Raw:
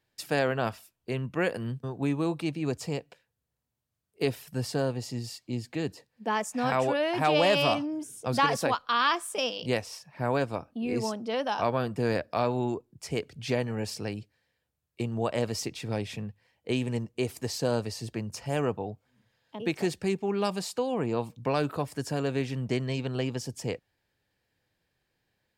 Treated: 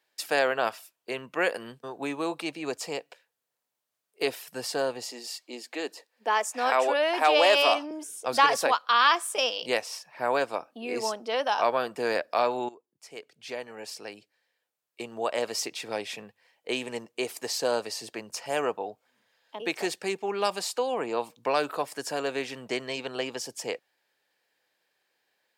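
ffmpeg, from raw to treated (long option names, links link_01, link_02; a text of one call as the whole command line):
ffmpeg -i in.wav -filter_complex "[0:a]asettb=1/sr,asplit=3[link_01][link_02][link_03];[link_01]atrim=end=5.114[link_04];[link_02]atrim=start=5.11:end=7.91,asetpts=PTS-STARTPTS,afade=type=in:duration=0.004:curve=qsin,afade=type=out:start_time=2.796:duration=0.004:curve=qsin,highpass=frequency=250:width=0.5412,highpass=frequency=250:width=1.3066[link_05];[link_03]atrim=start=7.906[link_06];[link_04][link_05]acrossfade=duration=0.004:curve1=hsin:curve2=qsin[link_07];[link_07][link_06]acrossfade=duration=0.004:curve1=qsin:curve2=hsin,asplit=2[link_08][link_09];[link_08]atrim=end=12.69,asetpts=PTS-STARTPTS,afade=type=out:start_time=12.686:duration=0.004:curve=hsin:silence=0.133352[link_10];[link_09]atrim=start=12.69,asetpts=PTS-STARTPTS,afade=type=in:duration=3.08:silence=0.133352[link_11];[link_10][link_11]concat=n=2:v=0:a=1,highpass=500,volume=4.5dB" out.wav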